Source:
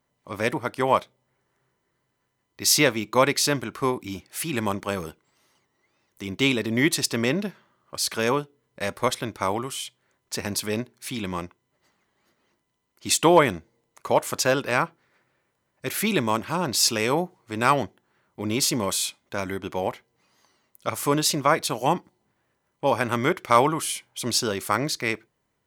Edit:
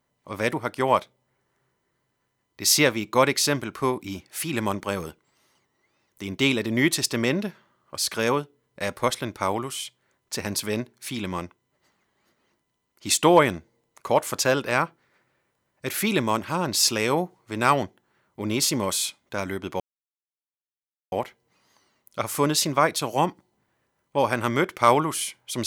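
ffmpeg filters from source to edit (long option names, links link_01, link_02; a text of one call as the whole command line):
ffmpeg -i in.wav -filter_complex "[0:a]asplit=2[link_01][link_02];[link_01]atrim=end=19.8,asetpts=PTS-STARTPTS,afade=type=out:start_time=19.796:duration=0.004:curve=hsin,apad=pad_dur=1.32[link_03];[link_02]atrim=start=19.8,asetpts=PTS-STARTPTS,afade=type=in:duration=0.004:curve=hsin[link_04];[link_03][link_04]concat=n=2:v=0:a=1" out.wav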